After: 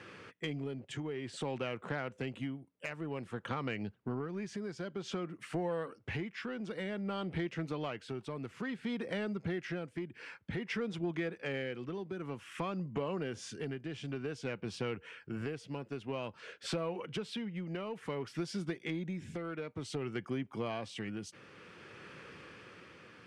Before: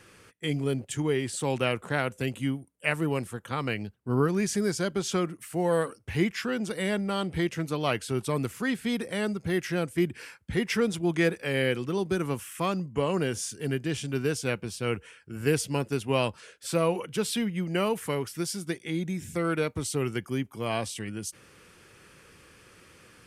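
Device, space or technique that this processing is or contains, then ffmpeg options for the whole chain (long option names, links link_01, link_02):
AM radio: -af "highpass=120,lowpass=3500,acompressor=threshold=-36dB:ratio=10,asoftclip=type=tanh:threshold=-29.5dB,tremolo=f=0.54:d=0.4,volume=4.5dB"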